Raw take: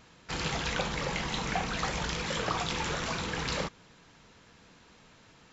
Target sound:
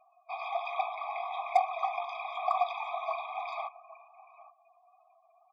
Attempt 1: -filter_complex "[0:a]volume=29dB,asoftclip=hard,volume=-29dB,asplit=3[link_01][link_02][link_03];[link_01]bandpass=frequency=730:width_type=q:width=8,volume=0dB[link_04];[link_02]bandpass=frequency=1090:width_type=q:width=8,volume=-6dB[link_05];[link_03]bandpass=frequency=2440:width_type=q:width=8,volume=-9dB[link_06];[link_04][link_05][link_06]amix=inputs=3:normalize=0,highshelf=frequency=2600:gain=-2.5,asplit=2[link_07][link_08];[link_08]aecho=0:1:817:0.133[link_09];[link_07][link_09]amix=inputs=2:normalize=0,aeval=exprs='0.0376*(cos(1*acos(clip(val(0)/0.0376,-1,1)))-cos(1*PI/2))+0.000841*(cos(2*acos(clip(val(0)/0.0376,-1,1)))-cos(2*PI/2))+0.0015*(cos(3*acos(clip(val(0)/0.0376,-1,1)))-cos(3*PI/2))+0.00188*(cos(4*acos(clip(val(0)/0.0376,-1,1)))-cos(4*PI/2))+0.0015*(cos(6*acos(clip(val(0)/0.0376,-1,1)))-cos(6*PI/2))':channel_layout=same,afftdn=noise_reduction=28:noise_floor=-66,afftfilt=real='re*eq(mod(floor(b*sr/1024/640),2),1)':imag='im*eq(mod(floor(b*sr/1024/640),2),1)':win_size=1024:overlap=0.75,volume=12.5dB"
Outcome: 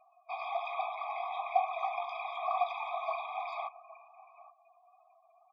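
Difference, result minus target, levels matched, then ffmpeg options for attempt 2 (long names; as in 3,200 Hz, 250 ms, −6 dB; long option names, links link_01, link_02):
gain into a clipping stage and back: distortion +29 dB
-filter_complex "[0:a]volume=18dB,asoftclip=hard,volume=-18dB,asplit=3[link_01][link_02][link_03];[link_01]bandpass=frequency=730:width_type=q:width=8,volume=0dB[link_04];[link_02]bandpass=frequency=1090:width_type=q:width=8,volume=-6dB[link_05];[link_03]bandpass=frequency=2440:width_type=q:width=8,volume=-9dB[link_06];[link_04][link_05][link_06]amix=inputs=3:normalize=0,highshelf=frequency=2600:gain=-2.5,asplit=2[link_07][link_08];[link_08]aecho=0:1:817:0.133[link_09];[link_07][link_09]amix=inputs=2:normalize=0,aeval=exprs='0.0376*(cos(1*acos(clip(val(0)/0.0376,-1,1)))-cos(1*PI/2))+0.000841*(cos(2*acos(clip(val(0)/0.0376,-1,1)))-cos(2*PI/2))+0.0015*(cos(3*acos(clip(val(0)/0.0376,-1,1)))-cos(3*PI/2))+0.00188*(cos(4*acos(clip(val(0)/0.0376,-1,1)))-cos(4*PI/2))+0.0015*(cos(6*acos(clip(val(0)/0.0376,-1,1)))-cos(6*PI/2))':channel_layout=same,afftdn=noise_reduction=28:noise_floor=-66,afftfilt=real='re*eq(mod(floor(b*sr/1024/640),2),1)':imag='im*eq(mod(floor(b*sr/1024/640),2),1)':win_size=1024:overlap=0.75,volume=12.5dB"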